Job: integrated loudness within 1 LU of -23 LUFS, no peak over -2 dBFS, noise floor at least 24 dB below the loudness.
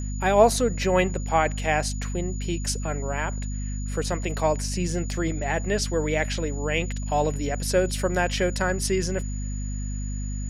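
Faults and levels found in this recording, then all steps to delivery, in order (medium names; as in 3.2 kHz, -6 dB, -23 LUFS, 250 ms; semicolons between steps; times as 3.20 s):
hum 50 Hz; highest harmonic 250 Hz; hum level -27 dBFS; steady tone 6.9 kHz; tone level -41 dBFS; loudness -25.5 LUFS; peak level -5.0 dBFS; loudness target -23.0 LUFS
-> hum notches 50/100/150/200/250 Hz; band-stop 6.9 kHz, Q 30; trim +2.5 dB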